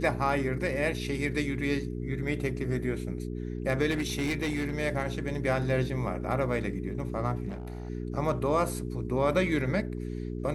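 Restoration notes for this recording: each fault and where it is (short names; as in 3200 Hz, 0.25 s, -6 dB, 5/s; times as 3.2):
hum 60 Hz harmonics 7 -35 dBFS
3.9–4.79 clipped -25 dBFS
7.48–7.9 clipped -33 dBFS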